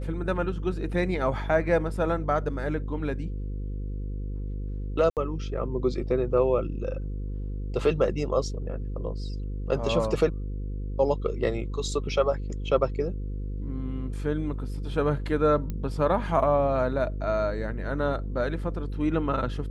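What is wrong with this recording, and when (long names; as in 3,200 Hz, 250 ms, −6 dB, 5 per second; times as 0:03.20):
mains buzz 50 Hz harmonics 10 −32 dBFS
0:05.10–0:05.17: drop-out 68 ms
0:15.70: click −20 dBFS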